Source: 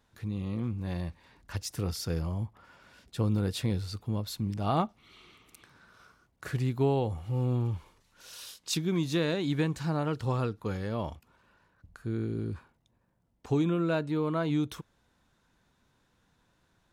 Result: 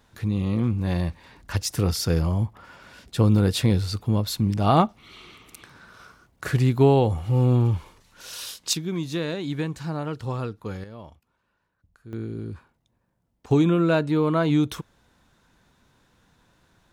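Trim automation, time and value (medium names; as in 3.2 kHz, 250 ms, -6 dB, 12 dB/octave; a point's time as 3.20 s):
+9.5 dB
from 8.73 s +0.5 dB
from 10.84 s -8.5 dB
from 12.13 s +0.5 dB
from 13.51 s +8 dB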